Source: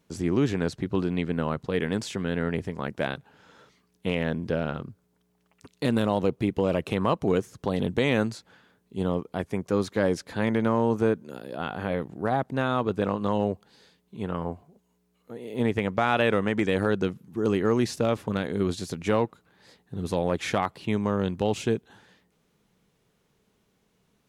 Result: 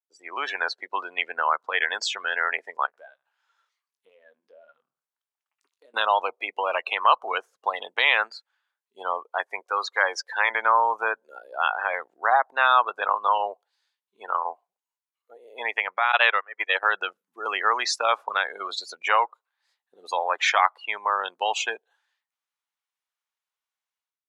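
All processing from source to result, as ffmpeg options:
ffmpeg -i in.wav -filter_complex "[0:a]asettb=1/sr,asplit=3[link_01][link_02][link_03];[link_01]atrim=end=2.864[link_04];[link_02]atrim=start=2.86:end=5.94,asetpts=PTS-STARTPTS,afade=type=in:duration=0.004:curve=qsin,afade=type=out:start_time=3.076:duration=0.004:curve=qsin,asplit=2[link_05][link_06];[link_06]adelay=74,lowpass=frequency=810:poles=1,volume=-14dB,asplit=2[link_07][link_08];[link_08]adelay=74,lowpass=frequency=810:poles=1,volume=0.37,asplit=2[link_09][link_10];[link_10]adelay=74,lowpass=frequency=810:poles=1,volume=0.37,asplit=2[link_11][link_12];[link_12]adelay=74,lowpass=frequency=810:poles=1,volume=0.37[link_13];[link_05][link_07][link_09][link_11][link_13]amix=inputs=5:normalize=0,atrim=end_sample=135828,acompressor=threshold=-46dB:ratio=3:attack=3.2:release=140:knee=1:detection=peak,asplit=2[link_14][link_15];[link_15]adelay=21,volume=-11dB[link_16];[link_14][link_16]amix=inputs=2:normalize=0,atrim=end_sample=135828[link_17];[link_03]atrim=start=5.936[link_18];[link_04][link_17]acrossfade=duration=0.004:curve1=hsin:curve2=qsin[link_19];[link_19][link_18]acrossfade=duration=0.004:curve1=qsin:curve2=hsin,asettb=1/sr,asplit=3[link_20][link_21][link_22];[link_20]atrim=end=9.604[link_23];[link_21]atrim=start=9.6:end=10.5,asetpts=PTS-STARTPTS,afade=type=in:duration=0.004:curve=qsin,afade=type=out:start_time=0.896:duration=0.004:curve=qsin,highpass=300,equalizer=frequency=630:width=7.1:gain=-4.5[link_24];[link_22]atrim=start=10.496[link_25];[link_23][link_24]acrossfade=duration=0.004:curve1=hsin:curve2=qsin[link_26];[link_26][link_25]acrossfade=duration=0.004:curve1=qsin:curve2=hsin,asettb=1/sr,asplit=3[link_27][link_28][link_29];[link_27]atrim=end=16.124[link_30];[link_28]atrim=start=16.12:end=16.83,asetpts=PTS-STARTPTS,afade=type=in:duration=0.004:curve=qsin,afade=type=out:start_time=0.706:duration=0.004:curve=qsin,highpass=frequency=260:width=0.5412,highpass=frequency=260:width=1.3066,agate=range=-22dB:threshold=-25dB:ratio=16:release=100:detection=peak,acontrast=78[link_31];[link_29]atrim=start=16.826[link_32];[link_30][link_31]acrossfade=duration=0.004:curve1=hsin:curve2=qsin[link_33];[link_33][link_32]acrossfade=duration=0.004:curve1=qsin:curve2=hsin,afftdn=noise_reduction=30:noise_floor=-37,highpass=frequency=880:width=0.5412,highpass=frequency=880:width=1.3066,dynaudnorm=framelen=130:gausssize=5:maxgain=16.5dB,volume=-2.5dB" out.wav

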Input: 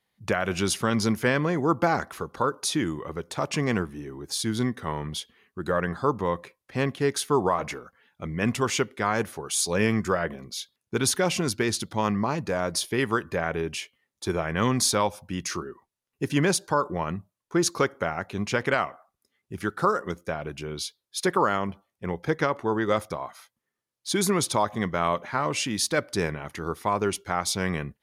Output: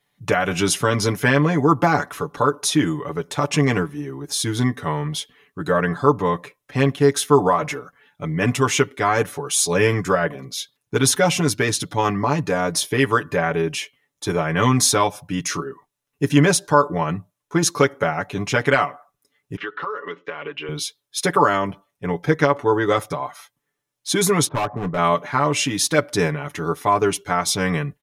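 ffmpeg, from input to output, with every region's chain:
ffmpeg -i in.wav -filter_complex "[0:a]asettb=1/sr,asplit=3[link_01][link_02][link_03];[link_01]atrim=end=19.564[link_04];[link_02]atrim=start=19.56:end=20.69,asetpts=PTS-STARTPTS,afade=type=in:duration=0.004:curve=qsin,afade=type=out:start_time=1.126:duration=0.004:curve=qsin,highpass=350,equalizer=frequency=440:width_type=q:width=4:gain=4,equalizer=frequency=700:width_type=q:width=4:gain=-9,equalizer=frequency=1100:width_type=q:width=4:gain=6,equalizer=frequency=1900:width_type=q:width=4:gain=7,equalizer=frequency=2900:width_type=q:width=4:gain=10,lowpass=frequency=3700:width=0.5412,lowpass=frequency=3700:width=1.3066,acompressor=threshold=-32dB:ratio=5:attack=3.2:release=140:knee=1:detection=peak[link_05];[link_03]atrim=start=20.686[link_06];[link_04][link_05]acrossfade=duration=0.004:curve1=hsin:curve2=qsin[link_07];[link_07][link_06]acrossfade=duration=0.004:curve1=qsin:curve2=hsin,asettb=1/sr,asplit=3[link_08][link_09][link_10];[link_08]atrim=end=24.484[link_11];[link_09]atrim=start=24.48:end=24.98,asetpts=PTS-STARTPTS,afade=type=in:duration=0.004:curve=qsin,afade=type=out:start_time=0.496:duration=0.004:curve=qsin,lowpass=frequency=1300:width=0.5412,lowpass=frequency=1300:width=1.3066,asoftclip=type=hard:threshold=-24dB[link_12];[link_10]atrim=start=24.976[link_13];[link_11][link_12]acrossfade=duration=0.004:curve1=hsin:curve2=qsin[link_14];[link_14][link_13]acrossfade=duration=0.004:curve1=qsin:curve2=hsin,bandreject=frequency=4600:width=11,aecho=1:1:6.9:0.79,volume=4.5dB" out.wav

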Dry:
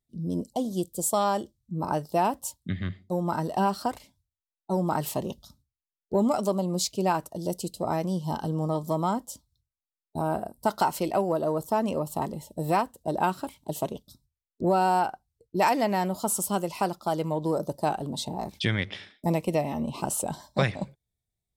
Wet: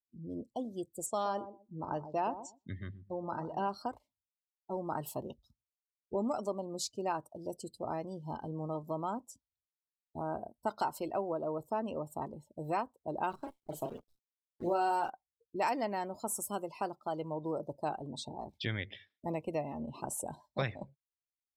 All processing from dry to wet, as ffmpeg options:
ffmpeg -i in.wav -filter_complex "[0:a]asettb=1/sr,asplit=3[link_01][link_02][link_03];[link_01]atrim=end=1.064[link_04];[link_02]atrim=start=1.06:end=3.69,asetpts=PTS-STARTPTS,afade=type=in:duration=0.004:curve=qsin,afade=type=out:start_time=2.626:duration=0.004:curve=qsin,lowpass=frequency=6900:width=0.5412,lowpass=frequency=6900:width=1.3066,asplit=2[link_05][link_06];[link_06]adelay=125,lowpass=frequency=1100:poles=1,volume=-10.5dB,asplit=2[link_07][link_08];[link_08]adelay=125,lowpass=frequency=1100:poles=1,volume=0.25,asplit=2[link_09][link_10];[link_10]adelay=125,lowpass=frequency=1100:poles=1,volume=0.25[link_11];[link_05][link_07][link_09][link_11]amix=inputs=4:normalize=0,atrim=end_sample=115983[link_12];[link_03]atrim=start=3.686[link_13];[link_04][link_12]acrossfade=duration=0.004:curve1=hsin:curve2=qsin[link_14];[link_14][link_13]acrossfade=duration=0.004:curve1=qsin:curve2=hsin,asettb=1/sr,asplit=3[link_15][link_16][link_17];[link_15]atrim=end=13.304[link_18];[link_16]atrim=start=13.3:end=15.1,asetpts=PTS-STARTPTS,afade=type=in:duration=0.004:curve=qsin,afade=type=out:start_time=1.796:duration=0.004:curve=qsin,asplit=2[link_19][link_20];[link_20]adelay=35,volume=-6dB[link_21];[link_19][link_21]amix=inputs=2:normalize=0,atrim=end_sample=79380,acrusher=bits=7:dc=4:mix=0:aa=0.000001[link_22];[link_17]atrim=start=15.096[link_23];[link_18][link_22]acrossfade=duration=0.004:curve1=hsin:curve2=qsin[link_24];[link_24][link_23]acrossfade=duration=0.004:curve1=qsin:curve2=hsin,afftdn=noise_reduction=20:noise_floor=-41,equalizer=frequency=180:width=5.9:gain=-10.5,volume=-9dB" out.wav

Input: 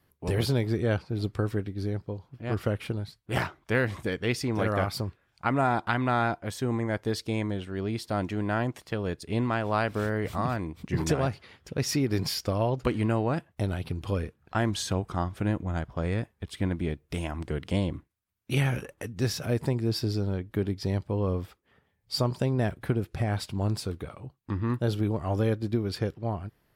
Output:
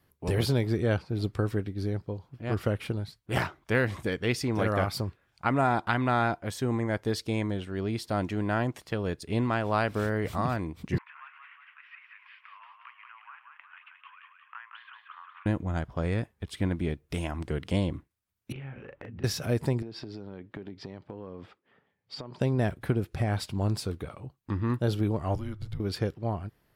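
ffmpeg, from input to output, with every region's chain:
ffmpeg -i in.wav -filter_complex "[0:a]asettb=1/sr,asplit=3[link_01][link_02][link_03];[link_01]atrim=end=10.984[link_04];[link_02]atrim=start=10.98:end=15.46,asetpts=PTS-STARTPTS,afade=type=in:duration=0.004:curve=qsin,afade=type=out:start_time=4.476:duration=0.004:curve=qsin,acompressor=threshold=-38dB:ratio=2.5:attack=3.2:release=140:knee=1:detection=peak,asuperpass=centerf=1700:order=12:qfactor=0.89,asplit=8[link_05][link_06][link_07][link_08][link_09][link_10][link_11][link_12];[link_06]adelay=180,afreqshift=32,volume=-5dB[link_13];[link_07]adelay=360,afreqshift=64,volume=-10dB[link_14];[link_08]adelay=540,afreqshift=96,volume=-15.1dB[link_15];[link_09]adelay=720,afreqshift=128,volume=-20.1dB[link_16];[link_10]adelay=900,afreqshift=160,volume=-25.1dB[link_17];[link_11]adelay=1080,afreqshift=192,volume=-30.2dB[link_18];[link_12]adelay=1260,afreqshift=224,volume=-35.2dB[link_19];[link_05][link_13][link_14][link_15][link_16][link_17][link_18][link_19]amix=inputs=8:normalize=0,atrim=end_sample=197568[link_20];[link_03]atrim=start=15.456[link_21];[link_04][link_20]acrossfade=duration=0.004:curve1=hsin:curve2=qsin[link_22];[link_22][link_21]acrossfade=duration=0.004:curve1=qsin:curve2=hsin,asettb=1/sr,asplit=3[link_23][link_24][link_25];[link_23]atrim=end=18.524[link_26];[link_24]atrim=start=18.52:end=19.24,asetpts=PTS-STARTPTS,afade=type=in:duration=0.004:curve=qsin,afade=type=out:start_time=0.716:duration=0.004:curve=qsin,lowpass=frequency=2800:width=0.5412,lowpass=frequency=2800:width=1.3066,acompressor=threshold=-39dB:ratio=20:attack=3.2:release=140:knee=1:detection=peak,asplit=2[link_27][link_28];[link_28]adelay=37,volume=-3dB[link_29];[link_27][link_29]amix=inputs=2:normalize=0,atrim=end_sample=31752[link_30];[link_25]atrim=start=19.236[link_31];[link_26][link_30]acrossfade=duration=0.004:curve1=hsin:curve2=qsin[link_32];[link_32][link_31]acrossfade=duration=0.004:curve1=qsin:curve2=hsin,asettb=1/sr,asplit=3[link_33][link_34][link_35];[link_33]atrim=end=19.824[link_36];[link_34]atrim=start=19.82:end=22.41,asetpts=PTS-STARTPTS,afade=type=in:duration=0.004:curve=qsin,afade=type=out:start_time=2.586:duration=0.004:curve=qsin,highpass=170,lowpass=3400,acompressor=threshold=-35dB:ratio=16:attack=3.2:release=140:knee=1:detection=peak[link_37];[link_35]atrim=start=22.406[link_38];[link_36][link_37]acrossfade=duration=0.004:curve1=hsin:curve2=qsin[link_39];[link_39][link_38]acrossfade=duration=0.004:curve1=qsin:curve2=hsin,asettb=1/sr,asplit=3[link_40][link_41][link_42];[link_40]atrim=end=25.354[link_43];[link_41]atrim=start=25.35:end=25.8,asetpts=PTS-STARTPTS,afade=type=in:duration=0.004:curve=qsin,afade=type=out:start_time=0.446:duration=0.004:curve=qsin,equalizer=frequency=660:width_type=o:width=0.35:gain=6,acompressor=threshold=-32dB:ratio=4:attack=3.2:release=140:knee=1:detection=peak,afreqshift=-210[link_44];[link_42]atrim=start=25.796[link_45];[link_43][link_44]acrossfade=duration=0.004:curve1=hsin:curve2=qsin[link_46];[link_46][link_45]acrossfade=duration=0.004:curve1=qsin:curve2=hsin" out.wav

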